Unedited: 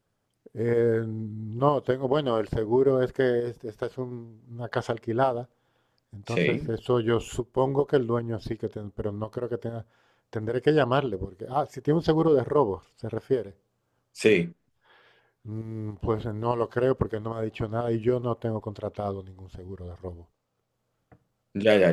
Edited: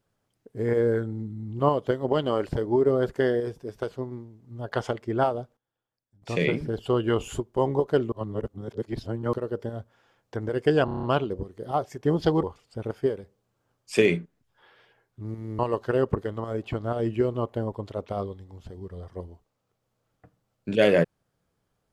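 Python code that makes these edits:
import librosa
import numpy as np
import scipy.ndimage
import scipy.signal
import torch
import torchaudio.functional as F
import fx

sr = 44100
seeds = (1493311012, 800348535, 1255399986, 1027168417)

y = fx.edit(x, sr, fx.fade_down_up(start_s=5.18, length_s=1.43, db=-19.0, fade_s=0.39, curve='log'),
    fx.reverse_span(start_s=8.12, length_s=1.21),
    fx.stutter(start_s=10.85, slice_s=0.03, count=7),
    fx.cut(start_s=12.25, length_s=0.45),
    fx.cut(start_s=15.86, length_s=0.61), tone=tone)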